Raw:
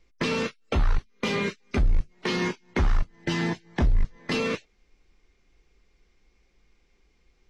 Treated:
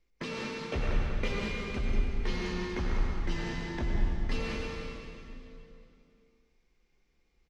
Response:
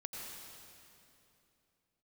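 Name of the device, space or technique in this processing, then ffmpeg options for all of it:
cave: -filter_complex "[0:a]asettb=1/sr,asplit=3[a][b][c];[a]atrim=end=0.734[d];[b]atrim=start=0.73:end=1.28,asetpts=PTS-STARTPTS,afade=t=in:d=0.004:c=qsin,afade=t=out:st=0.546:d=0.004:c=qsin,equalizer=f=125:t=o:w=1:g=5,equalizer=f=500:t=o:w=1:g=8,equalizer=f=1k:t=o:w=1:g=-4,equalizer=f=2k:t=o:w=1:g=7[e];[c]atrim=start=1.276[f];[d][e]acrossfade=d=0.004:c1=hsin:c2=qsin[g];[g][f]acrossfade=d=0.004:c1=qsin:c2=hsin,aecho=1:1:192:0.335[h];[1:a]atrim=start_sample=2205[i];[h][i]afir=irnorm=-1:irlink=0,volume=-6.5dB"

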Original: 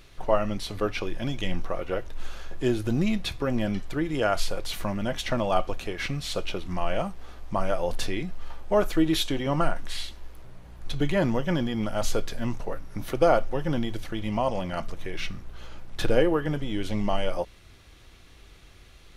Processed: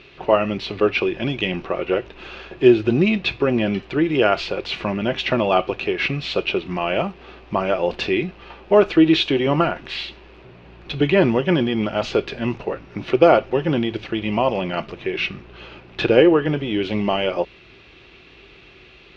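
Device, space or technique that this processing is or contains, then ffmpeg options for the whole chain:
guitar cabinet: -af "highpass=76,equalizer=f=87:t=q:w=4:g=-10,equalizer=f=380:t=q:w=4:g=9,equalizer=f=2.6k:t=q:w=4:g=10,lowpass=f=4.4k:w=0.5412,lowpass=f=4.4k:w=1.3066,volume=6dB"

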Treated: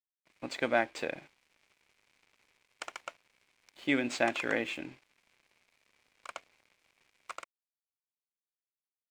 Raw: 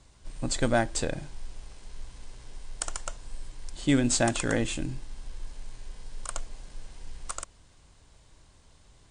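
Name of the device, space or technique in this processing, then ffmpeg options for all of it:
pocket radio on a weak battery: -af "highpass=320,lowpass=3.4k,aeval=exprs='sgn(val(0))*max(abs(val(0))-0.00188,0)':c=same,equalizer=f=2.3k:t=o:w=0.44:g=10,volume=-2.5dB"

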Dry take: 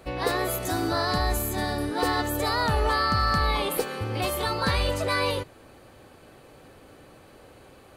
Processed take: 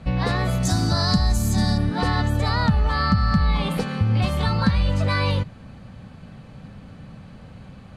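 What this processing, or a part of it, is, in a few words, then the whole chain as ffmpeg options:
jukebox: -filter_complex "[0:a]asettb=1/sr,asplit=3[a][b][c];[a]atrim=end=0.634[d];[b]atrim=start=0.63:end=1.78,asetpts=PTS-STARTPTS,afade=t=in:d=0.004:c=qsin,afade=t=out:st=1.146:d=0.004:c=qsin,highshelf=f=4k:t=q:w=1.5:g=10.5[e];[c]atrim=start=1.776[f];[d][e]acrossfade=d=0.004:c1=hsin:c2=qsin[g];[g][f]acrossfade=d=0.004:c1=qsin:c2=hsin,lowpass=5.7k,lowshelf=f=260:t=q:w=3:g=10,acompressor=threshold=-18dB:ratio=5,volume=2.5dB"

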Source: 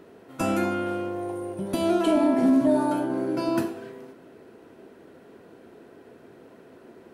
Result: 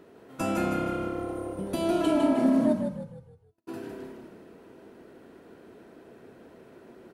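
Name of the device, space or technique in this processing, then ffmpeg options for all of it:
ducked delay: -filter_complex "[0:a]asplit=3[a][b][c];[b]adelay=160,volume=-5.5dB[d];[c]apad=whole_len=321805[e];[d][e]sidechaincompress=threshold=-35dB:ratio=8:attack=16:release=251[f];[a][f]amix=inputs=2:normalize=0,asplit=3[g][h][i];[g]afade=t=out:st=2.72:d=0.02[j];[h]agate=range=-59dB:threshold=-16dB:ratio=16:detection=peak,afade=t=in:st=2.72:d=0.02,afade=t=out:st=3.67:d=0.02[k];[i]afade=t=in:st=3.67:d=0.02[l];[j][k][l]amix=inputs=3:normalize=0,asplit=6[m][n][o][p][q][r];[n]adelay=155,afreqshift=-35,volume=-6dB[s];[o]adelay=310,afreqshift=-70,volume=-13.7dB[t];[p]adelay=465,afreqshift=-105,volume=-21.5dB[u];[q]adelay=620,afreqshift=-140,volume=-29.2dB[v];[r]adelay=775,afreqshift=-175,volume=-37dB[w];[m][s][t][u][v][w]amix=inputs=6:normalize=0,volume=-3.5dB"

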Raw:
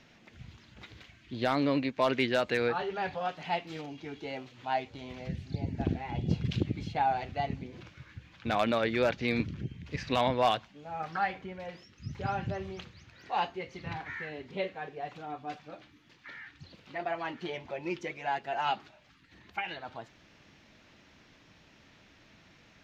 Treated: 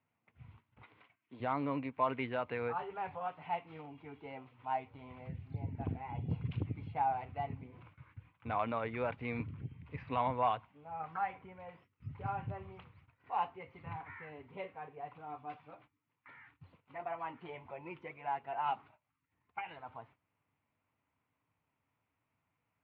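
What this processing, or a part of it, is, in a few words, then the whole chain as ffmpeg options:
bass cabinet: -filter_complex "[0:a]agate=range=-16dB:threshold=-53dB:ratio=16:detection=peak,asettb=1/sr,asplit=3[a][b][c];[a]atrim=end=0.824[d];[b]atrim=start=0.82:end=1.4,asetpts=PTS-STARTPTS,afade=t=in:d=0.004:c=qsin,afade=t=out:st=0.576:d=0.004:c=qsin,highpass=260[e];[c]atrim=start=1.396[f];[d][e]acrossfade=d=0.004:c1=hsin:c2=qsin[g];[g][f]acrossfade=d=0.004:c1=qsin:c2=hsin,asettb=1/sr,asplit=3[h][i][j];[h]atrim=end=15.264[k];[i]atrim=start=15.26:end=15.75,asetpts=PTS-STARTPTS,afade=t=in:d=0.004:c=qsin,afade=t=out:st=0.486:d=0.004:c=qsin,highshelf=f=4.2k:g=11.5[l];[j]atrim=start=15.746[m];[k][l]acrossfade=d=0.004:c1=hsin:c2=qsin[n];[n][m]acrossfade=d=0.004:c1=qsin:c2=hsin,highpass=86,equalizer=f=99:t=q:w=4:g=5,equalizer=f=200:t=q:w=4:g=-9,equalizer=f=350:t=q:w=4:g=-9,equalizer=f=580:t=q:w=4:g=-5,equalizer=f=1k:t=q:w=4:g=6,equalizer=f=1.7k:t=q:w=4:g=-9,lowpass=f=2.3k:w=0.5412,lowpass=f=2.3k:w=1.3066,volume=-5dB"

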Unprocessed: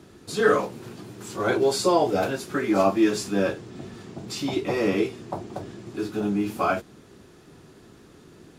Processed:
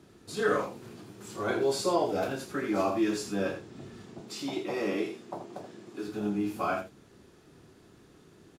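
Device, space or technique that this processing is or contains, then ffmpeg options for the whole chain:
slapback doubling: -filter_complex "[0:a]asplit=3[a][b][c];[b]adelay=29,volume=-8.5dB[d];[c]adelay=81,volume=-8.5dB[e];[a][d][e]amix=inputs=3:normalize=0,asettb=1/sr,asplit=3[f][g][h];[f]atrim=end=4.204[i];[g]atrim=start=4.2:end=6.08,asetpts=PTS-STARTPTS,afade=t=in:d=0.004:c=qsin,afade=t=out:st=1.876:d=0.004:c=qsin,highpass=190[j];[h]atrim=start=6.076[k];[i][j]acrossfade=d=0.004:c1=hsin:c2=qsin[l];[l][k]acrossfade=d=0.004:c1=qsin:c2=hsin,volume=-7.5dB"

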